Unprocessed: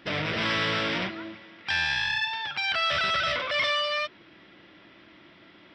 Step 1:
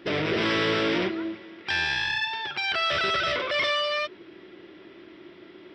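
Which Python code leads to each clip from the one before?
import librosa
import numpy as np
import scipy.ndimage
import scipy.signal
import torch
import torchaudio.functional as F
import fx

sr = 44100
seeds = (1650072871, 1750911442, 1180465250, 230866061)

y = fx.peak_eq(x, sr, hz=380.0, db=15.0, octaves=0.55)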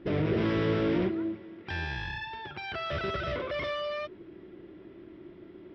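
y = fx.tilt_eq(x, sr, slope=-4.0)
y = F.gain(torch.from_numpy(y), -7.0).numpy()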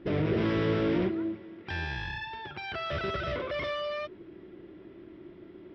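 y = x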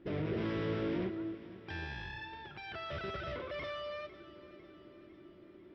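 y = fx.echo_feedback(x, sr, ms=500, feedback_pct=54, wet_db=-16.5)
y = F.gain(torch.from_numpy(y), -8.0).numpy()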